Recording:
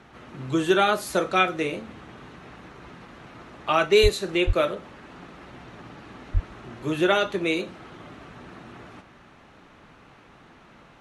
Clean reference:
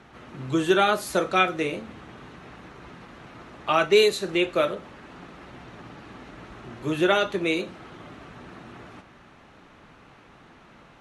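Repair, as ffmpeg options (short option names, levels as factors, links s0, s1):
-filter_complex "[0:a]asplit=3[s0][s1][s2];[s0]afade=t=out:st=4.02:d=0.02[s3];[s1]highpass=f=140:w=0.5412,highpass=f=140:w=1.3066,afade=t=in:st=4.02:d=0.02,afade=t=out:st=4.14:d=0.02[s4];[s2]afade=t=in:st=4.14:d=0.02[s5];[s3][s4][s5]amix=inputs=3:normalize=0,asplit=3[s6][s7][s8];[s6]afade=t=out:st=4.46:d=0.02[s9];[s7]highpass=f=140:w=0.5412,highpass=f=140:w=1.3066,afade=t=in:st=4.46:d=0.02,afade=t=out:st=4.58:d=0.02[s10];[s8]afade=t=in:st=4.58:d=0.02[s11];[s9][s10][s11]amix=inputs=3:normalize=0,asplit=3[s12][s13][s14];[s12]afade=t=out:st=6.33:d=0.02[s15];[s13]highpass=f=140:w=0.5412,highpass=f=140:w=1.3066,afade=t=in:st=6.33:d=0.02,afade=t=out:st=6.45:d=0.02[s16];[s14]afade=t=in:st=6.45:d=0.02[s17];[s15][s16][s17]amix=inputs=3:normalize=0"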